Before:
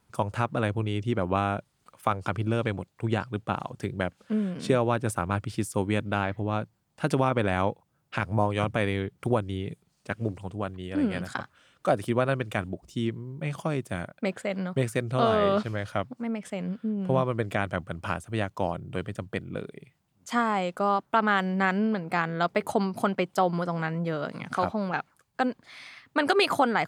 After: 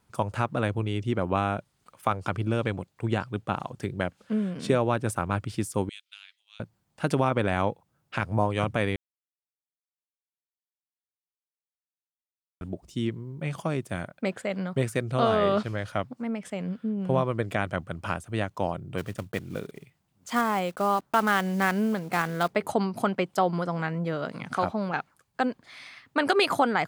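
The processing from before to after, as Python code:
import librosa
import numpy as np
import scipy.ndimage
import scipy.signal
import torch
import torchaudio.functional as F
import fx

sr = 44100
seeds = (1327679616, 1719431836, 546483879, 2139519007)

y = fx.ladder_highpass(x, sr, hz=2800.0, resonance_pct=40, at=(5.89, 6.6))
y = fx.block_float(y, sr, bits=5, at=(18.97, 22.52), fade=0.02)
y = fx.edit(y, sr, fx.silence(start_s=8.96, length_s=3.65), tone=tone)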